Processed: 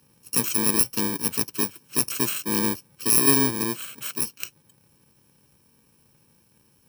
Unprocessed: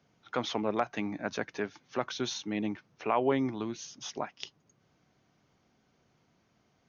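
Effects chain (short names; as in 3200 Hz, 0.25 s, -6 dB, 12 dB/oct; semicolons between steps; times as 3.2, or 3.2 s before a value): FFT order left unsorted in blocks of 64 samples; gain +9 dB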